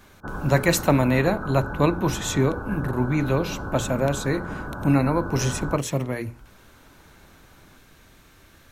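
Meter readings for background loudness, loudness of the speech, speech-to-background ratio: −33.5 LKFS, −24.0 LKFS, 9.5 dB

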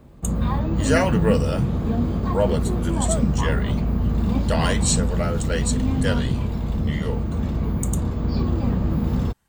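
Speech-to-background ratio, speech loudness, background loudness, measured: −3.5 dB, −27.0 LKFS, −23.5 LKFS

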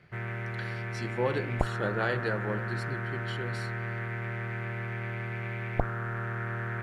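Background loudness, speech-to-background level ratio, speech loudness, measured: −34.5 LKFS, −0.5 dB, −35.0 LKFS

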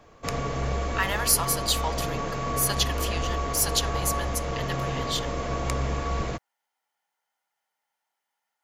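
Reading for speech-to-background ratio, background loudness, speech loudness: 2.5 dB, −30.0 LKFS, −27.5 LKFS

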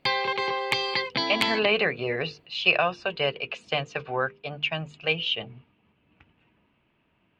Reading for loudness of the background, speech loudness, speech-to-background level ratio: −26.5 LKFS, −26.5 LKFS, 0.0 dB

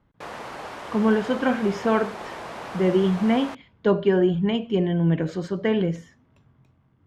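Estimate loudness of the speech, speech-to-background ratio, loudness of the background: −23.0 LKFS, 13.5 dB, −36.5 LKFS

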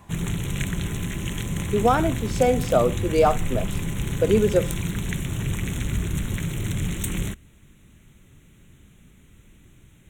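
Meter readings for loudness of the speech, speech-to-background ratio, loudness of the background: −22.5 LKFS, 6.0 dB, −28.5 LKFS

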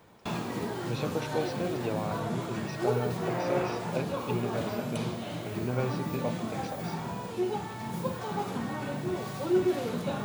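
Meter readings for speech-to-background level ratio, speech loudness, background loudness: −3.0 dB, −36.0 LKFS, −33.0 LKFS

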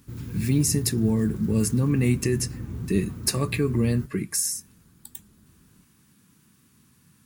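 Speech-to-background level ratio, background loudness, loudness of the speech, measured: 10.0 dB, −35.0 LKFS, −25.0 LKFS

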